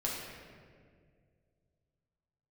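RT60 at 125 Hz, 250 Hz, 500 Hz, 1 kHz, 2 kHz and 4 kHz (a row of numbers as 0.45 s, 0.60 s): 3.1 s, 2.5 s, 2.4 s, 1.7 s, 1.6 s, 1.2 s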